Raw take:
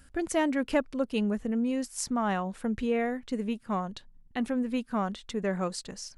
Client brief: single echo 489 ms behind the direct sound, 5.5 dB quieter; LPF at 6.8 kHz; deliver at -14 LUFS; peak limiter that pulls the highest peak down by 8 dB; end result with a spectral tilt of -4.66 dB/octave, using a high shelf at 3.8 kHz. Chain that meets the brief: low-pass 6.8 kHz; treble shelf 3.8 kHz +6.5 dB; peak limiter -21.5 dBFS; delay 489 ms -5.5 dB; trim +17 dB

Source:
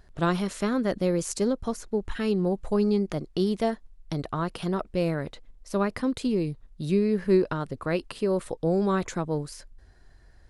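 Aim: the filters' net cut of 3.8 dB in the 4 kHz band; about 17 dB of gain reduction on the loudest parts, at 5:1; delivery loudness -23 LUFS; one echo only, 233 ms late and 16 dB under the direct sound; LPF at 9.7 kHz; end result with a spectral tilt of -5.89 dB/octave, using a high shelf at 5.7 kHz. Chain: low-pass 9.7 kHz; peaking EQ 4 kHz -7 dB; treble shelf 5.7 kHz +5.5 dB; compression 5:1, threshold -36 dBFS; delay 233 ms -16 dB; trim +16.5 dB

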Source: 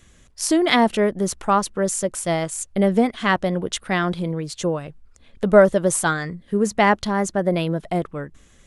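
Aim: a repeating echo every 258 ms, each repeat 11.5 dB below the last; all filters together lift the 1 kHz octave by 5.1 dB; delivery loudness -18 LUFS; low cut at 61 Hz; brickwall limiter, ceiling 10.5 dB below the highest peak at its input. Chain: high-pass 61 Hz; peaking EQ 1 kHz +6.5 dB; peak limiter -8.5 dBFS; feedback delay 258 ms, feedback 27%, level -11.5 dB; trim +3 dB

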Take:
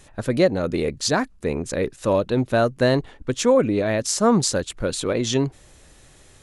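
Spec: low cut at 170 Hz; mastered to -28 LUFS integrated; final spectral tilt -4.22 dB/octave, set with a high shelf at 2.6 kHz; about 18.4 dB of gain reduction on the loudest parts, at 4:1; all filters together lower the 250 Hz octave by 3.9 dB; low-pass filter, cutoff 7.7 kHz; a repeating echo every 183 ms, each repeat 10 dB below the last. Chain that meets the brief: high-pass 170 Hz; low-pass 7.7 kHz; peaking EQ 250 Hz -3.5 dB; treble shelf 2.6 kHz -6.5 dB; compression 4:1, threshold -37 dBFS; feedback delay 183 ms, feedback 32%, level -10 dB; trim +10 dB

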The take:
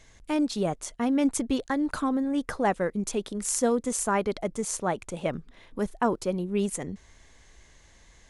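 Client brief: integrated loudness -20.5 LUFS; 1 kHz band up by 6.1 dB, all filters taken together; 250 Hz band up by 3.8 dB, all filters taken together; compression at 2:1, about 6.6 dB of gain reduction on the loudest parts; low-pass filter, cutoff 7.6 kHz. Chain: low-pass 7.6 kHz; peaking EQ 250 Hz +4 dB; peaking EQ 1 kHz +7.5 dB; compression 2:1, threshold -27 dBFS; trim +9 dB

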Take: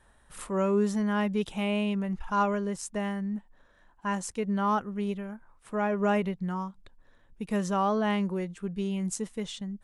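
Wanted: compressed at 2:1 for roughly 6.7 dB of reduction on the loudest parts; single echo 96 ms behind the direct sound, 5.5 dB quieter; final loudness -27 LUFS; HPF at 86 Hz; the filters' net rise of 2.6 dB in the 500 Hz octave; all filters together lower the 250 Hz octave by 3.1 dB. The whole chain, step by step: high-pass 86 Hz; peaking EQ 250 Hz -5 dB; peaking EQ 500 Hz +5 dB; compression 2:1, threshold -33 dBFS; delay 96 ms -5.5 dB; trim +6.5 dB

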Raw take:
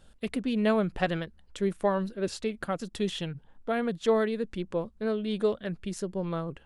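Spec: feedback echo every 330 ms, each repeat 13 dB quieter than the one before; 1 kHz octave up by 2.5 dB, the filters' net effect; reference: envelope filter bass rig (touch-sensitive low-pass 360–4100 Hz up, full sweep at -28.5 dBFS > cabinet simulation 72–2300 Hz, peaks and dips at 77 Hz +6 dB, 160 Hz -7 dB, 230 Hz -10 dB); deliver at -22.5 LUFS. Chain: peaking EQ 1 kHz +3.5 dB; feedback delay 330 ms, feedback 22%, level -13 dB; touch-sensitive low-pass 360–4100 Hz up, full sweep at -28.5 dBFS; cabinet simulation 72–2300 Hz, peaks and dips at 77 Hz +6 dB, 160 Hz -7 dB, 230 Hz -10 dB; trim +8.5 dB

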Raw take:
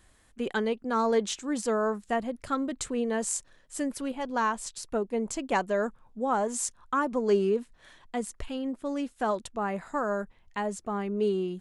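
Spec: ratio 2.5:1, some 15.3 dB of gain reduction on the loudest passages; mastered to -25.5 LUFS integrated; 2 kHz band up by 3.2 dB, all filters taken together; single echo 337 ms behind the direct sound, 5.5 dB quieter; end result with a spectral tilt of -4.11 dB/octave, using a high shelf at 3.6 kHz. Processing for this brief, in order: peaking EQ 2 kHz +6 dB; treble shelf 3.6 kHz -7 dB; compression 2.5:1, threshold -44 dBFS; delay 337 ms -5.5 dB; trim +16 dB

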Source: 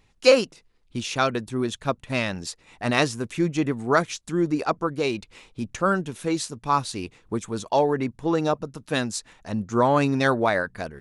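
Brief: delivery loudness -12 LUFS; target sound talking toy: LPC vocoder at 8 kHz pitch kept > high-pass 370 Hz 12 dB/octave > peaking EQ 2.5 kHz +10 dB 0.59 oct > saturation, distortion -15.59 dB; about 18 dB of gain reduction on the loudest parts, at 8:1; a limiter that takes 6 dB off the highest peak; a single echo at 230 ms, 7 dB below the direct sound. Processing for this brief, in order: compression 8:1, threshold -29 dBFS; peak limiter -24 dBFS; delay 230 ms -7 dB; LPC vocoder at 8 kHz pitch kept; high-pass 370 Hz 12 dB/octave; peaking EQ 2.5 kHz +10 dB 0.59 oct; saturation -27 dBFS; trim +26.5 dB

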